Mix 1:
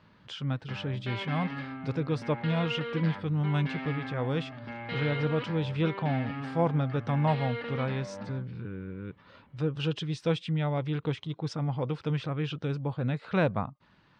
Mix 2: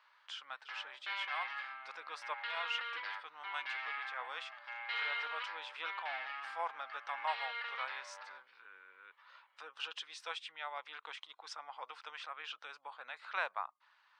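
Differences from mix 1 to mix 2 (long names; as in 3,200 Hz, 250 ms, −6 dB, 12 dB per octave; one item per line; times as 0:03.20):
speech: add parametric band 3,800 Hz −4.5 dB 2.4 octaves
master: add high-pass filter 950 Hz 24 dB per octave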